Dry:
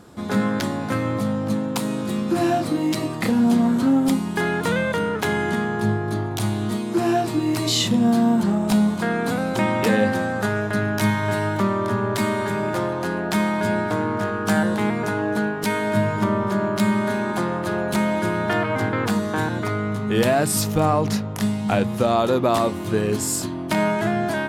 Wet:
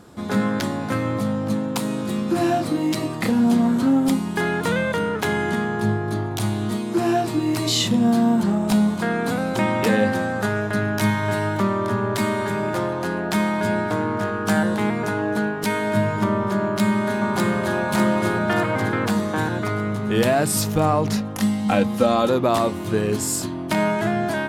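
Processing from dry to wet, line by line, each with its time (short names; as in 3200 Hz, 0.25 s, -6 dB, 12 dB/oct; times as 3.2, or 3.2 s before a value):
16.61–17.78 echo throw 0.6 s, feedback 55%, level -1.5 dB
21.17–22.29 comb 3.8 ms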